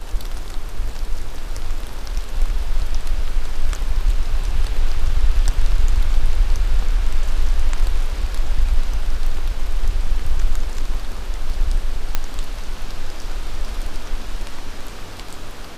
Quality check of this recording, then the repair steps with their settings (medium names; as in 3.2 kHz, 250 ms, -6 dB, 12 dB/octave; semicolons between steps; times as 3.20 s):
12.15 s: pop -4 dBFS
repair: de-click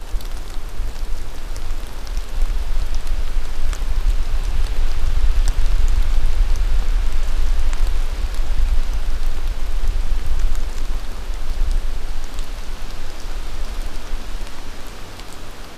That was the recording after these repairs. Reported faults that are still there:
nothing left